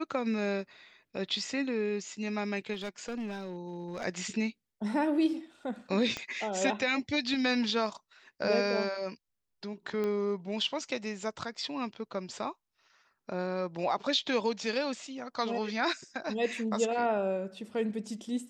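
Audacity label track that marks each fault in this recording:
2.730000	4.050000	clipped -32.5 dBFS
6.170000	6.170000	pop -20 dBFS
10.040000	10.040000	pop -22 dBFS

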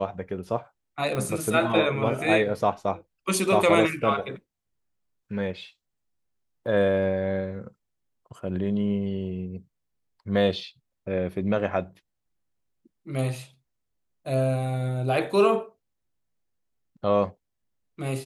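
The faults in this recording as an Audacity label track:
1.150000	1.150000	pop -17 dBFS

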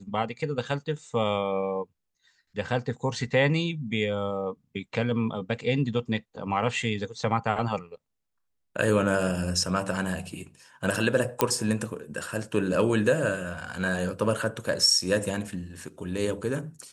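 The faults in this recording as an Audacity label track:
11.410000	11.410000	pop -6 dBFS

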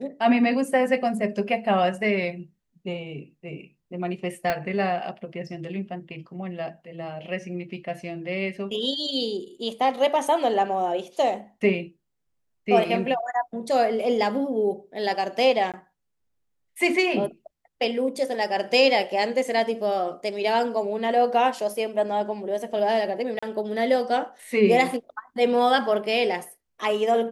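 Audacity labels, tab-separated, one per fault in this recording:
4.500000	4.500000	pop -11 dBFS
15.720000	15.740000	gap 17 ms
23.390000	23.430000	gap 35 ms

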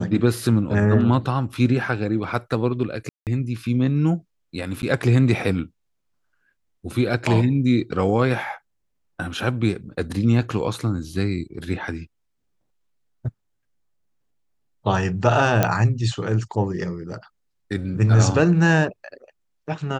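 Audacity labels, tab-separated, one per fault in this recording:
3.090000	3.270000	gap 0.178 s
4.820000	4.830000	gap 9.8 ms
15.630000	15.630000	pop -4 dBFS

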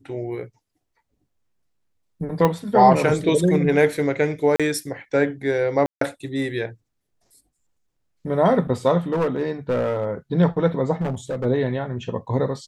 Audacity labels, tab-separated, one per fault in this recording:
2.450000	2.450000	pop -7 dBFS
4.560000	4.600000	gap 36 ms
5.860000	6.010000	gap 0.153 s
9.120000	10.100000	clipped -17 dBFS
11.010000	11.460000	clipped -21.5 dBFS

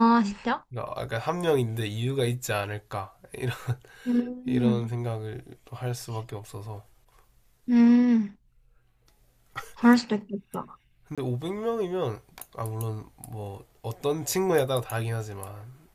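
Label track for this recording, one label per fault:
11.150000	11.180000	gap 26 ms

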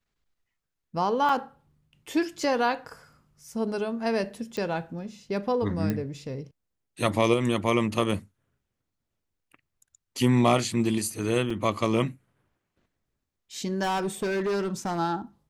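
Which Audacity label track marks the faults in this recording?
1.290000	1.290000	gap 4.5 ms
4.570000	4.570000	pop -21 dBFS
5.900000	5.900000	pop -15 dBFS
11.500000	11.500000	gap 3.9 ms
13.820000	14.990000	clipped -24 dBFS

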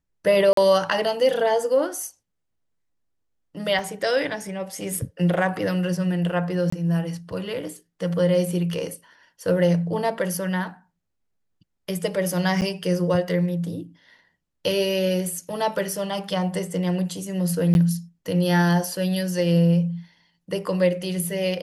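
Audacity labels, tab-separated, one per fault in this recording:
0.530000	0.570000	gap 43 ms
3.790000	3.790000	gap 2 ms
6.700000	6.720000	gap 24 ms
12.610000	12.620000	gap 8.8 ms
17.740000	17.750000	gap 11 ms

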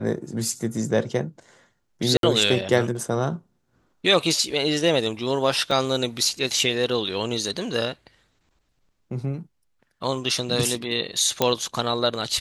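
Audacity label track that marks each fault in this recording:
2.170000	2.230000	gap 62 ms
5.710000	5.710000	gap 4.3 ms
11.420000	11.420000	pop -4 dBFS

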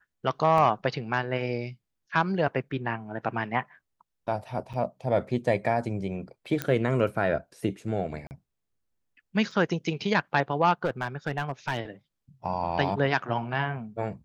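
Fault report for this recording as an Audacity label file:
0.580000	0.580000	gap 2.3 ms
4.730000	4.740000	gap 6.9 ms
6.620000	6.620000	pop -13 dBFS
8.270000	8.310000	gap 39 ms
9.510000	9.510000	gap 3.3 ms
10.840000	11.800000	clipped -21 dBFS

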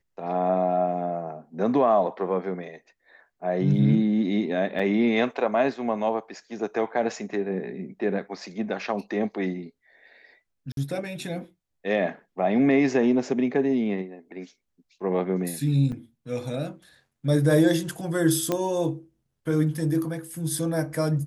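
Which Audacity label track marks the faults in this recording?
4.790000	4.800000	gap 5.2 ms
10.720000	10.770000	gap 52 ms
15.920000	15.920000	gap 3.3 ms
18.520000	18.520000	pop -11 dBFS

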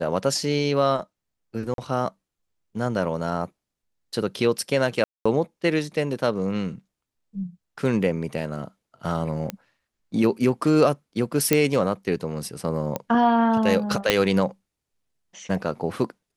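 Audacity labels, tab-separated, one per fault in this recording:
1.740000	1.780000	gap 42 ms
5.040000	5.250000	gap 0.215 s
9.500000	9.500000	pop -13 dBFS
11.530000	11.530000	pop -3 dBFS
12.960000	12.960000	pop -12 dBFS
14.100000	14.100000	pop -2 dBFS

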